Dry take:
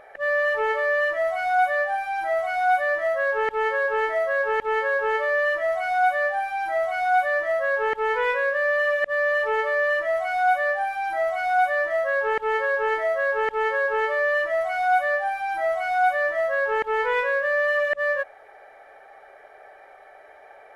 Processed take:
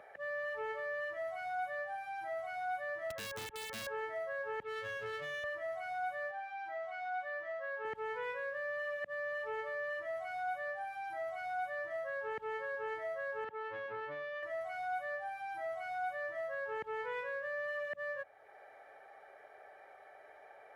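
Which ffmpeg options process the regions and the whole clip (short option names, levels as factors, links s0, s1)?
-filter_complex "[0:a]asettb=1/sr,asplit=3[s0][s1][s2];[s0]atrim=end=3.104[s3];[s1]atrim=start=3.1:end=3.87,asetpts=PTS-STARTPTS,afade=t=in:d=0.004:c=qsin,afade=t=out:st=0.766:d=0.004:c=qsin,lowpass=f=3000:w=0.5412,lowpass=f=3000:w=1.3066,acrossover=split=290|1100[s4][s5][s6];[s4]acompressor=threshold=0.00447:ratio=4[s7];[s5]acompressor=threshold=0.0316:ratio=4[s8];[s6]acompressor=threshold=0.0316:ratio=4[s9];[s7][s8][s9]amix=inputs=3:normalize=0,aeval=exprs='(mod(11.9*val(0)+1,2)-1)/11.9':c=same[s10];[s2]atrim=start=3.866[s11];[s3][s10]acrossfade=d=0.004:c1=hsin:c2=qsin[s12];[s12][s11]acrossfade=d=0.004:c1=qsin:c2=hsin,asettb=1/sr,asplit=3[s13][s14][s15];[s13]atrim=end=4.634[s16];[s14]atrim=start=4.63:end=5.44,asetpts=PTS-STARTPTS,afade=t=in:d=0.004:c=qsin,afade=t=out:st=0.806:d=0.004:c=qsin,lowpass=f=3400:t=q:w=1.7,equalizer=f=840:w=4.6:g=-14.5,aeval=exprs='clip(val(0),-1,0.0473)':c=same[s17];[s15]atrim=start=5.436[s18];[s16][s17]acrossfade=d=0.004:c1=hsin:c2=qsin[s19];[s19][s18]acrossfade=d=0.004:c1=qsin:c2=hsin,asettb=1/sr,asplit=3[s20][s21][s22];[s20]atrim=end=6.314[s23];[s21]atrim=start=6.31:end=7.85,asetpts=PTS-STARTPTS,afade=t=in:d=0.004:c=qsin,afade=t=out:st=1.536:d=0.004:c=qsin,highpass=110,lowpass=4500,lowshelf=f=420:g=-7[s24];[s22]atrim=start=7.846[s25];[s23][s24]acrossfade=d=0.004:c1=hsin:c2=qsin[s26];[s26][s25]acrossfade=d=0.004:c1=qsin:c2=hsin,asettb=1/sr,asplit=3[s27][s28][s29];[s27]atrim=end=13.444[s30];[s28]atrim=start=13.44:end=14.43,asetpts=PTS-STARTPTS,afade=t=in:d=0.004:c=qsin,afade=t=out:st=0.986:d=0.004:c=qsin,aeval=exprs='clip(val(0),-1,0.0335)':c=same,highpass=170,lowpass=2200[s31];[s29]atrim=start=14.426[s32];[s30][s31]acrossfade=d=0.004:c1=hsin:c2=qsin[s33];[s33][s32]acrossfade=d=0.004:c1=qsin:c2=hsin,highpass=78,acrossover=split=230[s34][s35];[s35]acompressor=threshold=0.00251:ratio=1.5[s36];[s34][s36]amix=inputs=2:normalize=0,volume=0.501"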